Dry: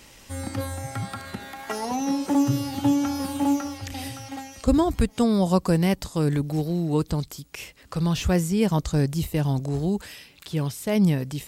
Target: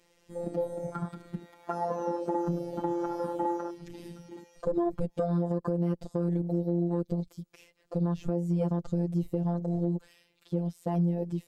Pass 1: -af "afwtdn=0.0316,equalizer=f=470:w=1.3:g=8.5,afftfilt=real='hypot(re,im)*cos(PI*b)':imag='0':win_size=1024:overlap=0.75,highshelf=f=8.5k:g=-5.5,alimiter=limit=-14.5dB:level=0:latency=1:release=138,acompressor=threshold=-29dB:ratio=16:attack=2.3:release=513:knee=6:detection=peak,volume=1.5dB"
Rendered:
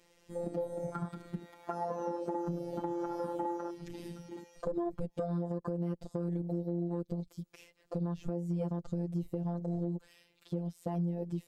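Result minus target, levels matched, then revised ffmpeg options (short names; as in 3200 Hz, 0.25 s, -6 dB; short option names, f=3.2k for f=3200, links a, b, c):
compressor: peak gain reduction +6.5 dB
-af "afwtdn=0.0316,equalizer=f=470:w=1.3:g=8.5,afftfilt=real='hypot(re,im)*cos(PI*b)':imag='0':win_size=1024:overlap=0.75,highshelf=f=8.5k:g=-5.5,alimiter=limit=-14.5dB:level=0:latency=1:release=138,acompressor=threshold=-22dB:ratio=16:attack=2.3:release=513:knee=6:detection=peak,volume=1.5dB"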